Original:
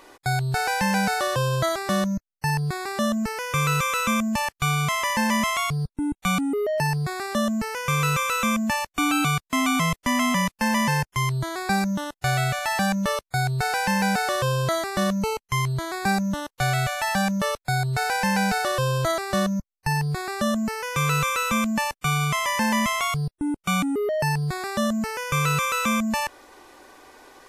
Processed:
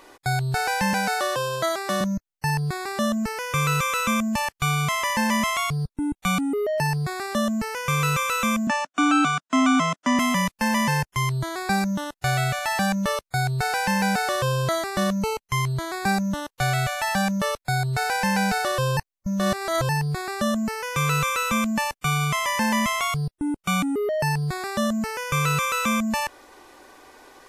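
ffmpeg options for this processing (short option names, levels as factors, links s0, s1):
-filter_complex "[0:a]asettb=1/sr,asplit=3[s0][s1][s2];[s0]atrim=end=0.934[s3];[s1]atrim=start=0.93:end=2.01,asetpts=PTS-STARTPTS,afade=t=in:d=0.004:c=qsin,afade=t=out:st=1.076:d=0.004:c=qsin,highpass=250[s4];[s2]atrim=start=2.006[s5];[s3][s4]acrossfade=d=0.004:c1=hsin:c2=qsin[s6];[s6][s5]acrossfade=d=0.004:c1=qsin:c2=hsin,asettb=1/sr,asplit=3[s7][s8][s9];[s7]atrim=end=8.674[s10];[s8]atrim=start=8.67:end=10.19,asetpts=PTS-STARTPTS,afade=t=in:d=0.004:c=qsin,afade=t=out:st=1.516:d=0.004:c=qsin,highpass=f=180:w=0.5412,highpass=f=180:w=1.3066,equalizer=f=270:t=q:w=4:g=6,equalizer=f=440:t=q:w=4:g=-7,equalizer=f=630:t=q:w=4:g=5,equalizer=f=1400:t=q:w=4:g=8,equalizer=f=2200:t=q:w=4:g=-4,equalizer=f=4400:t=q:w=4:g=-6,lowpass=f=7500:w=0.5412,lowpass=f=7500:w=1.3066[s11];[s9]atrim=start=10.186[s12];[s10][s11]acrossfade=d=0.004:c1=hsin:c2=qsin[s13];[s13][s12]acrossfade=d=0.004:c1=qsin:c2=hsin,asplit=3[s14][s15][s16];[s14]atrim=end=18.972[s17];[s15]atrim=start=18.968:end=19.892,asetpts=PTS-STARTPTS,areverse[s18];[s16]atrim=start=19.888[s19];[s17][s18]acrossfade=d=0.004:c1=hsin:c2=hsin[s20];[s20][s19]acrossfade=d=0.004:c1=hsin:c2=hsin"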